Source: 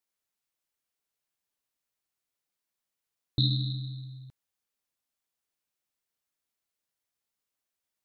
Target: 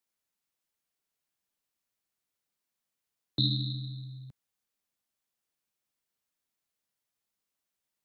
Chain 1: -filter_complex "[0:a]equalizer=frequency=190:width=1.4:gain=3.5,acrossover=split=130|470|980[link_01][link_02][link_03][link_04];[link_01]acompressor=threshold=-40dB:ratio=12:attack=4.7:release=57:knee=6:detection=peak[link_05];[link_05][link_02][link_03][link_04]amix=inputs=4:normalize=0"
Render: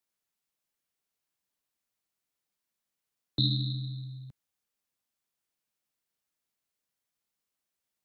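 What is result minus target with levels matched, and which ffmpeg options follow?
downward compressor: peak gain reduction −8.5 dB
-filter_complex "[0:a]equalizer=frequency=190:width=1.4:gain=3.5,acrossover=split=130|470|980[link_01][link_02][link_03][link_04];[link_01]acompressor=threshold=-49dB:ratio=12:attack=4.7:release=57:knee=6:detection=peak[link_05];[link_05][link_02][link_03][link_04]amix=inputs=4:normalize=0"

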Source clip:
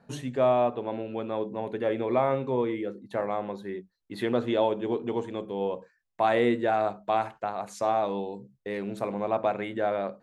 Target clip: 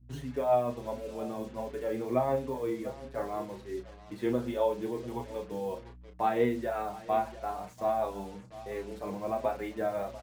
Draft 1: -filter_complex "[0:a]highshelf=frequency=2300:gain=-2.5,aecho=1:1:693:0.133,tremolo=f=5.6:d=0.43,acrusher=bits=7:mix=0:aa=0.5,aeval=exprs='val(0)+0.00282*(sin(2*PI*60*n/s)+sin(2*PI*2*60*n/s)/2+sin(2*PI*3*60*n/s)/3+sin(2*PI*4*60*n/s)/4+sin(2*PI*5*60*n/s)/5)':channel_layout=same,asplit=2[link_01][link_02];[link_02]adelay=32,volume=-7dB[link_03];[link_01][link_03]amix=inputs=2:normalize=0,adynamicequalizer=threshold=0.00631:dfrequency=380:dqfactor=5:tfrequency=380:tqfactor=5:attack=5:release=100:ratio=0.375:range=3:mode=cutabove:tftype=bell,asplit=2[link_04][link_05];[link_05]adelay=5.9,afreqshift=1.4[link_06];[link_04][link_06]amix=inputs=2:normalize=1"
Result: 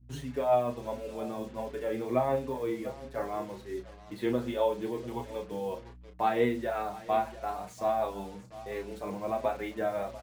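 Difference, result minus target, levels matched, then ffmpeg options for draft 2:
4,000 Hz band +3.0 dB
-filter_complex "[0:a]highshelf=frequency=2300:gain=-9,aecho=1:1:693:0.133,tremolo=f=5.6:d=0.43,acrusher=bits=7:mix=0:aa=0.5,aeval=exprs='val(0)+0.00282*(sin(2*PI*60*n/s)+sin(2*PI*2*60*n/s)/2+sin(2*PI*3*60*n/s)/3+sin(2*PI*4*60*n/s)/4+sin(2*PI*5*60*n/s)/5)':channel_layout=same,asplit=2[link_01][link_02];[link_02]adelay=32,volume=-7dB[link_03];[link_01][link_03]amix=inputs=2:normalize=0,adynamicequalizer=threshold=0.00631:dfrequency=380:dqfactor=5:tfrequency=380:tqfactor=5:attack=5:release=100:ratio=0.375:range=3:mode=cutabove:tftype=bell,asplit=2[link_04][link_05];[link_05]adelay=5.9,afreqshift=1.4[link_06];[link_04][link_06]amix=inputs=2:normalize=1"

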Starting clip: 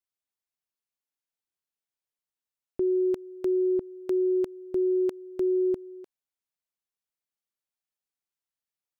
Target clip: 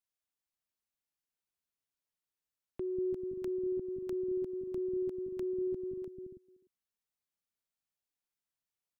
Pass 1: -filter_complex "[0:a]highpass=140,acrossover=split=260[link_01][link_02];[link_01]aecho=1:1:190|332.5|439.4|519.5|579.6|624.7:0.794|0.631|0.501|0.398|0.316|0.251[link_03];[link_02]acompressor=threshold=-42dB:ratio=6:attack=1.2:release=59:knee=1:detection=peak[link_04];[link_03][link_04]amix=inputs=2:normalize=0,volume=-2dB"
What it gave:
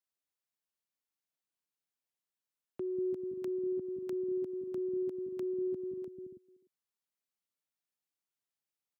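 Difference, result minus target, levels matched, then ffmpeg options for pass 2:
125 Hz band −3.5 dB
-filter_complex "[0:a]acrossover=split=260[link_01][link_02];[link_01]aecho=1:1:190|332.5|439.4|519.5|579.6|624.7:0.794|0.631|0.501|0.398|0.316|0.251[link_03];[link_02]acompressor=threshold=-42dB:ratio=6:attack=1.2:release=59:knee=1:detection=peak[link_04];[link_03][link_04]amix=inputs=2:normalize=0,volume=-2dB"

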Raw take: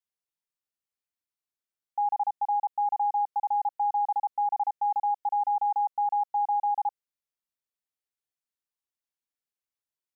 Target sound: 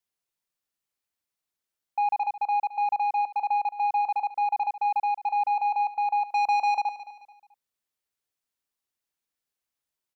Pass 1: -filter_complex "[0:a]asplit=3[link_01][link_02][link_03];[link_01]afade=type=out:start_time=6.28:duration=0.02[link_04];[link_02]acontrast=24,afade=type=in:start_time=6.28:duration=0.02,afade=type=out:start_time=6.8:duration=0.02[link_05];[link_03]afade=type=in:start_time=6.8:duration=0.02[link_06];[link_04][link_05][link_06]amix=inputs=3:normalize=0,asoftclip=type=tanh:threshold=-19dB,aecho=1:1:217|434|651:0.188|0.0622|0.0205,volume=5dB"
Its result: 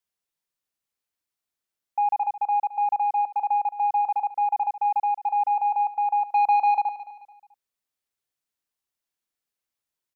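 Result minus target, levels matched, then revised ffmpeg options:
soft clipping: distortion −7 dB
-filter_complex "[0:a]asplit=3[link_01][link_02][link_03];[link_01]afade=type=out:start_time=6.28:duration=0.02[link_04];[link_02]acontrast=24,afade=type=in:start_time=6.28:duration=0.02,afade=type=out:start_time=6.8:duration=0.02[link_05];[link_03]afade=type=in:start_time=6.8:duration=0.02[link_06];[link_04][link_05][link_06]amix=inputs=3:normalize=0,asoftclip=type=tanh:threshold=-25dB,aecho=1:1:217|434|651:0.188|0.0622|0.0205,volume=5dB"

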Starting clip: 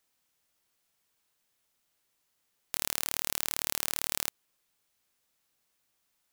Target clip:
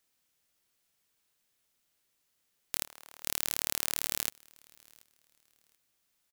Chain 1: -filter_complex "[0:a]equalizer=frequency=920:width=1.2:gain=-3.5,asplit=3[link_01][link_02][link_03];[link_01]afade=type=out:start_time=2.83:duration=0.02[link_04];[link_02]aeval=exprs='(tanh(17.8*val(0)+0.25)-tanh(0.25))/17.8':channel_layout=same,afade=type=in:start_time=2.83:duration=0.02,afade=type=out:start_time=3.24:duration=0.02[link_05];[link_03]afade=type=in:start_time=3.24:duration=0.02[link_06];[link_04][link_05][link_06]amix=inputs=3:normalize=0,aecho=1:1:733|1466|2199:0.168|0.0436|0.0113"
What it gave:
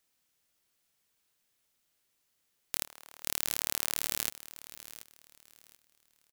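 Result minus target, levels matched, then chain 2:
echo-to-direct +11.5 dB
-filter_complex "[0:a]equalizer=frequency=920:width=1.2:gain=-3.5,asplit=3[link_01][link_02][link_03];[link_01]afade=type=out:start_time=2.83:duration=0.02[link_04];[link_02]aeval=exprs='(tanh(17.8*val(0)+0.25)-tanh(0.25))/17.8':channel_layout=same,afade=type=in:start_time=2.83:duration=0.02,afade=type=out:start_time=3.24:duration=0.02[link_05];[link_03]afade=type=in:start_time=3.24:duration=0.02[link_06];[link_04][link_05][link_06]amix=inputs=3:normalize=0,aecho=1:1:733|1466:0.0447|0.0116"

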